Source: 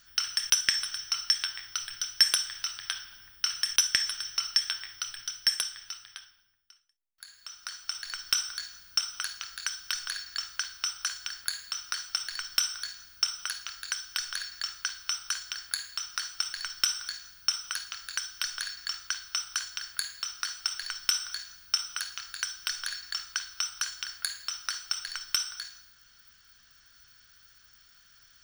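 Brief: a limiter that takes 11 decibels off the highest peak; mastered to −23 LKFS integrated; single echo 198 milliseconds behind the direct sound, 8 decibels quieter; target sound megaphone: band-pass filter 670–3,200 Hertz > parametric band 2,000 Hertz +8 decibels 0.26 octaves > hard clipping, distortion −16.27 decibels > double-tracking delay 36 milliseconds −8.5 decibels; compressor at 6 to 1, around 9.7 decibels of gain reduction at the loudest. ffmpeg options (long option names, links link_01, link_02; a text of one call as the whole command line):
ffmpeg -i in.wav -filter_complex "[0:a]acompressor=threshold=-31dB:ratio=6,alimiter=limit=-21.5dB:level=0:latency=1,highpass=670,lowpass=3200,equalizer=frequency=2000:width_type=o:width=0.26:gain=8,aecho=1:1:198:0.398,asoftclip=type=hard:threshold=-28.5dB,asplit=2[link_01][link_02];[link_02]adelay=36,volume=-8.5dB[link_03];[link_01][link_03]amix=inputs=2:normalize=0,volume=20.5dB" out.wav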